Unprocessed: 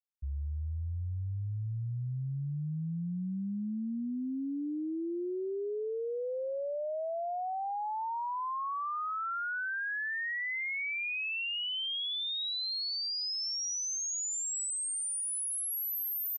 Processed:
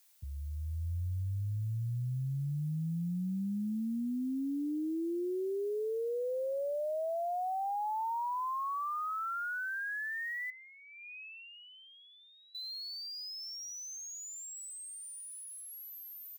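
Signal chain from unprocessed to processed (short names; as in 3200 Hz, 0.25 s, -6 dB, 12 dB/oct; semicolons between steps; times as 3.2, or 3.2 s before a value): HPF 120 Hz 24 dB/oct; tilt -3.5 dB/oct; limiter -31.5 dBFS, peak gain reduction 8.5 dB; added noise blue -65 dBFS; 10.5–12.55 vowel filter e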